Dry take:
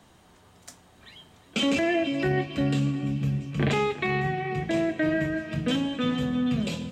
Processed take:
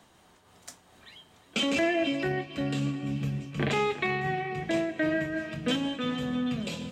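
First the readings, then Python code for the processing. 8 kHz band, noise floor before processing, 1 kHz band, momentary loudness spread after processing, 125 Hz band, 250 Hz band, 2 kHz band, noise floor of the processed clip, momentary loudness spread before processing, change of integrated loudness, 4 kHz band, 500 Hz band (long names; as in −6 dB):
−0.5 dB, −57 dBFS, −1.5 dB, 7 LU, −6.0 dB, −4.0 dB, −1.0 dB, −60 dBFS, 4 LU, −3.0 dB, −1.0 dB, −2.0 dB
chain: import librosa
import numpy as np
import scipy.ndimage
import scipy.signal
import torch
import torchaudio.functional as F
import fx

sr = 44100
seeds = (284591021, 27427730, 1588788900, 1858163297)

y = fx.low_shelf(x, sr, hz=240.0, db=-6.5)
y = fx.am_noise(y, sr, seeds[0], hz=5.7, depth_pct=55)
y = y * 10.0 ** (2.0 / 20.0)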